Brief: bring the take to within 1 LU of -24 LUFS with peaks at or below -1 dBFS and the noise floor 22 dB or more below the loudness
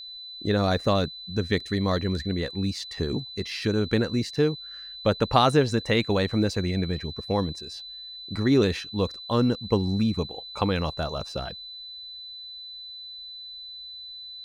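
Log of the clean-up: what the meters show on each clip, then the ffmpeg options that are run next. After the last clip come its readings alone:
steady tone 4 kHz; tone level -38 dBFS; loudness -26.0 LUFS; peak level -3.5 dBFS; loudness target -24.0 LUFS
-> -af "bandreject=f=4000:w=30"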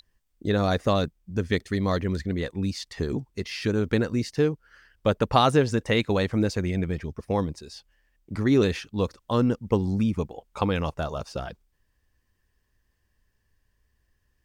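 steady tone not found; loudness -26.0 LUFS; peak level -4.0 dBFS; loudness target -24.0 LUFS
-> -af "volume=1.26"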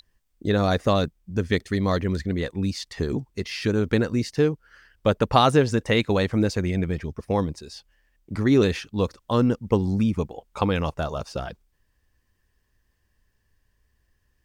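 loudness -24.0 LUFS; peak level -2.0 dBFS; noise floor -71 dBFS

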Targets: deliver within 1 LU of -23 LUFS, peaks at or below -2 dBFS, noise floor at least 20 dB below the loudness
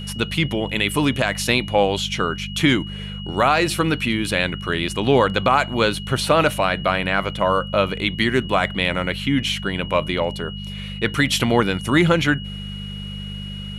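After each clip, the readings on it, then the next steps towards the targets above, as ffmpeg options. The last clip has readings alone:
hum 50 Hz; highest harmonic 200 Hz; hum level -30 dBFS; steady tone 2.9 kHz; tone level -35 dBFS; loudness -20.0 LUFS; peak level -4.0 dBFS; loudness target -23.0 LUFS
-> -af "bandreject=f=50:t=h:w=4,bandreject=f=100:t=h:w=4,bandreject=f=150:t=h:w=4,bandreject=f=200:t=h:w=4"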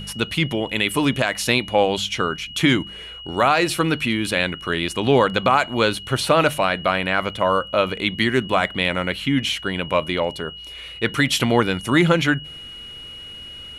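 hum not found; steady tone 2.9 kHz; tone level -35 dBFS
-> -af "bandreject=f=2900:w=30"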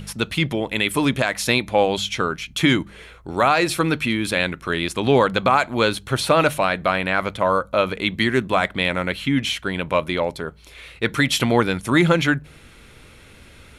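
steady tone not found; loudness -20.5 LUFS; peak level -4.0 dBFS; loudness target -23.0 LUFS
-> -af "volume=0.75"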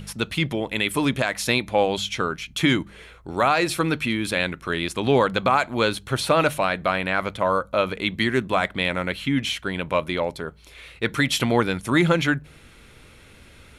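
loudness -23.0 LUFS; peak level -6.5 dBFS; noise floor -49 dBFS

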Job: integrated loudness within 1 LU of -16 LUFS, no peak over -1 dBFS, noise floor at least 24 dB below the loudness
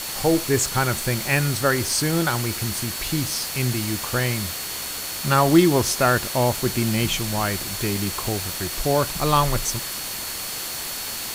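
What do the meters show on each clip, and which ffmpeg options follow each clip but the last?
steady tone 4.4 kHz; tone level -37 dBFS; noise floor -31 dBFS; noise floor target -46 dBFS; loudness -22.0 LUFS; peak level -2.5 dBFS; loudness target -16.0 LUFS
-> -af "bandreject=f=4400:w=30"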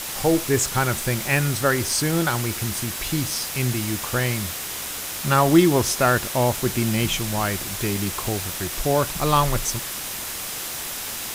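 steady tone not found; noise floor -31 dBFS; noise floor target -47 dBFS
-> -af "afftdn=nr=16:nf=-31"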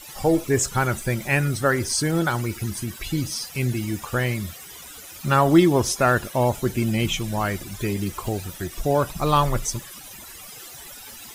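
noise floor -41 dBFS; noise floor target -47 dBFS
-> -af "afftdn=nr=6:nf=-41"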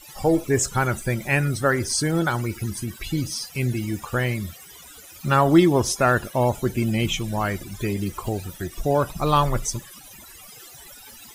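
noise floor -45 dBFS; noise floor target -47 dBFS
-> -af "afftdn=nr=6:nf=-45"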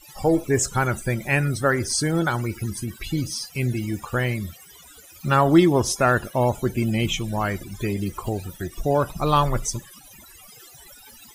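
noise floor -48 dBFS; loudness -23.0 LUFS; peak level -3.0 dBFS; loudness target -16.0 LUFS
-> -af "volume=2.24,alimiter=limit=0.891:level=0:latency=1"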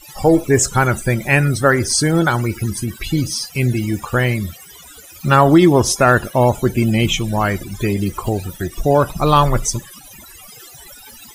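loudness -16.5 LUFS; peak level -1.0 dBFS; noise floor -41 dBFS

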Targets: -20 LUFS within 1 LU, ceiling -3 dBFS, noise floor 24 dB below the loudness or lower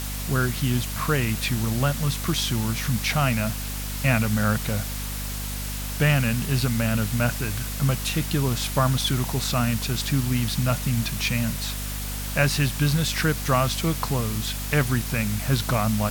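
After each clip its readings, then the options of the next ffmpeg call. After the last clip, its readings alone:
hum 50 Hz; highest harmonic 250 Hz; hum level -29 dBFS; noise floor -30 dBFS; noise floor target -48 dBFS; loudness -24.0 LUFS; peak level -6.5 dBFS; loudness target -20.0 LUFS
-> -af "bandreject=f=50:t=h:w=6,bandreject=f=100:t=h:w=6,bandreject=f=150:t=h:w=6,bandreject=f=200:t=h:w=6,bandreject=f=250:t=h:w=6"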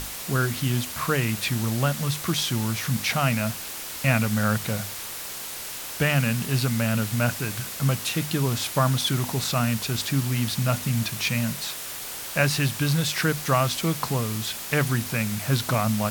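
hum not found; noise floor -35 dBFS; noise floor target -49 dBFS
-> -af "afftdn=nr=14:nf=-35"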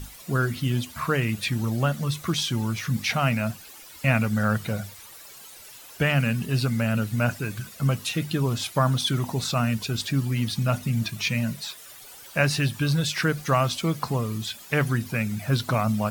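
noise floor -46 dBFS; noise floor target -50 dBFS
-> -af "afftdn=nr=6:nf=-46"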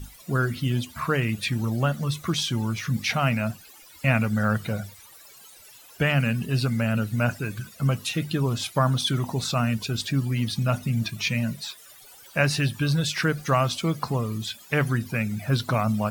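noise floor -49 dBFS; noise floor target -50 dBFS
-> -af "afftdn=nr=6:nf=-49"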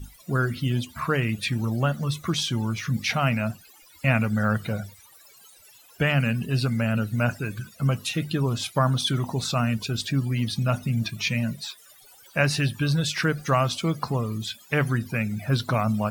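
noise floor -53 dBFS; loudness -25.5 LUFS; peak level -7.0 dBFS; loudness target -20.0 LUFS
-> -af "volume=1.88,alimiter=limit=0.708:level=0:latency=1"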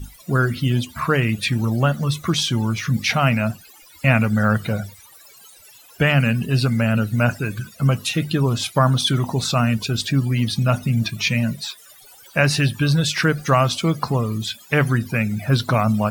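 loudness -20.0 LUFS; peak level -3.0 dBFS; noise floor -47 dBFS

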